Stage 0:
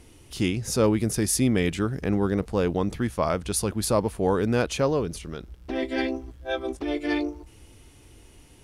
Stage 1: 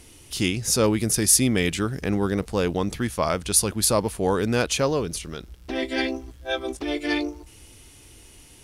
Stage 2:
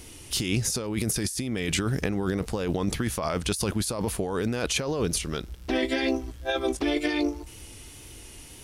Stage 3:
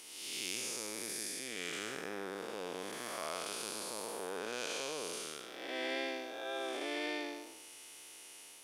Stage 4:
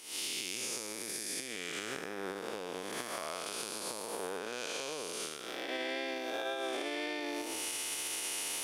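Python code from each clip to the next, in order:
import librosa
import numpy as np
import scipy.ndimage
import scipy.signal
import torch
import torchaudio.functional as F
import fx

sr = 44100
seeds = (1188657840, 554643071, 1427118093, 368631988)

y1 = fx.high_shelf(x, sr, hz=2200.0, db=9.0)
y2 = fx.over_compress(y1, sr, threshold_db=-27.0, ratio=-1.0)
y2 = fx.wow_flutter(y2, sr, seeds[0], rate_hz=2.1, depth_cents=28.0)
y3 = fx.spec_blur(y2, sr, span_ms=333.0)
y3 = scipy.signal.sosfilt(scipy.signal.butter(2, 570.0, 'highpass', fs=sr, output='sos'), y3)
y3 = y3 * 10.0 ** (-3.5 / 20.0)
y4 = fx.recorder_agc(y3, sr, target_db=-28.0, rise_db_per_s=65.0, max_gain_db=30)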